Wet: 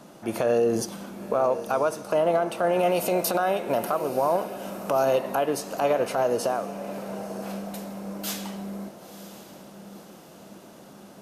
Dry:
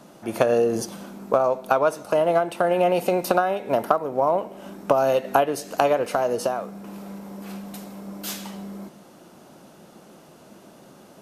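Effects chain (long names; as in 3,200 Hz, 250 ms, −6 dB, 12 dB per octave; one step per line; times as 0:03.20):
0:02.79–0:05.05: high-shelf EQ 4,100 Hz +8.5 dB
brickwall limiter −14 dBFS, peak gain reduction 11 dB
feedback delay with all-pass diffusion 986 ms, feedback 44%, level −13 dB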